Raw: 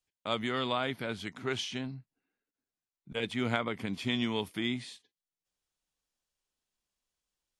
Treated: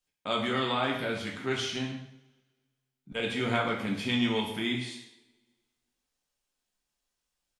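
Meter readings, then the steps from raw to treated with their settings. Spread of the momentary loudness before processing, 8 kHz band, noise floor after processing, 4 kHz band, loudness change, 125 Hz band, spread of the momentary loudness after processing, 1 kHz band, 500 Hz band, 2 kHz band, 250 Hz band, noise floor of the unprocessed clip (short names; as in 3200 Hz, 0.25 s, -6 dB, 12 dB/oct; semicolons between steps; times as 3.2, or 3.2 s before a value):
9 LU, +3.5 dB, -84 dBFS, +3.5 dB, +3.5 dB, +2.5 dB, 9 LU, +4.0 dB, +3.5 dB, +4.0 dB, +3.5 dB, under -85 dBFS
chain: speakerphone echo 0.13 s, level -12 dB; two-slope reverb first 0.61 s, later 1.6 s, from -21 dB, DRR -1.5 dB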